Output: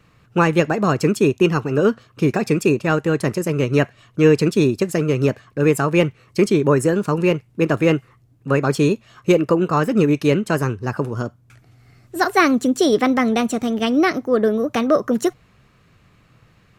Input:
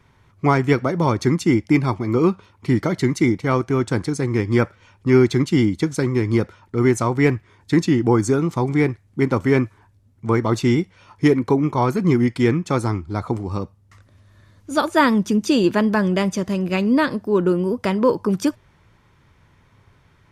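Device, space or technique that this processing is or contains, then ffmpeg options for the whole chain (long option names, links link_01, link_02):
nightcore: -af "asetrate=53361,aresample=44100,volume=1dB"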